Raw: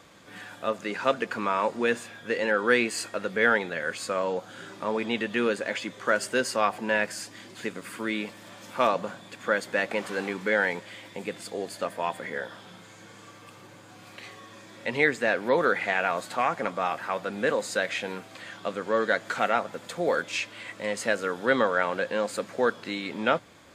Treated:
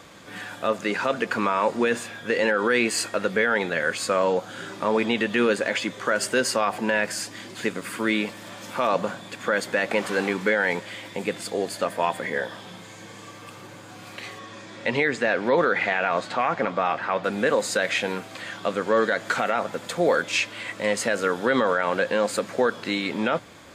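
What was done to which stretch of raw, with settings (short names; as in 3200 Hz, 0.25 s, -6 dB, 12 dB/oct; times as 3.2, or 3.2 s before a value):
12.22–13.39 notch 1400 Hz, Q 7.9
14.38–17.23 LPF 8100 Hz -> 3900 Hz
whole clip: limiter -17.5 dBFS; gain +6.5 dB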